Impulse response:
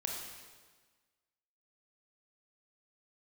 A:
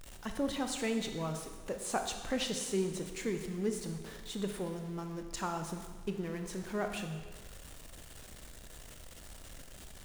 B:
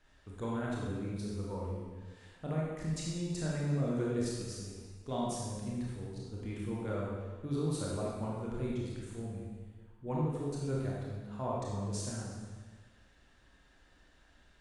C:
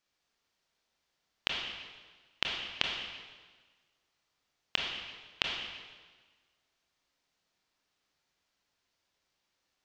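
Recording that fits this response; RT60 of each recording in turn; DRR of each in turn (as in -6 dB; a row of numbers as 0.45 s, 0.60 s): C; 1.4 s, 1.4 s, 1.4 s; 5.5 dB, -5.0 dB, -0.5 dB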